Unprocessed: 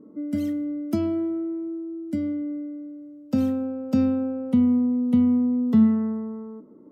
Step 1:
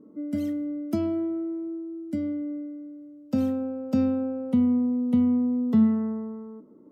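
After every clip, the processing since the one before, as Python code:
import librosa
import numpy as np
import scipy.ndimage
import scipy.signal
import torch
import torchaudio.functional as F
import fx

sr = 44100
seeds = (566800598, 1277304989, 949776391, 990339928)

y = fx.dynamic_eq(x, sr, hz=630.0, q=1.0, threshold_db=-37.0, ratio=4.0, max_db=3)
y = y * librosa.db_to_amplitude(-3.0)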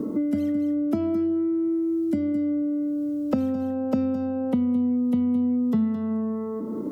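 y = x + 10.0 ** (-11.5 / 20.0) * np.pad(x, (int(215 * sr / 1000.0), 0))[:len(x)]
y = fx.band_squash(y, sr, depth_pct=100)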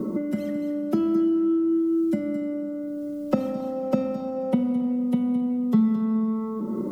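y = x + 0.85 * np.pad(x, (int(5.4 * sr / 1000.0), 0))[:len(x)]
y = fx.rev_schroeder(y, sr, rt60_s=3.4, comb_ms=30, drr_db=8.5)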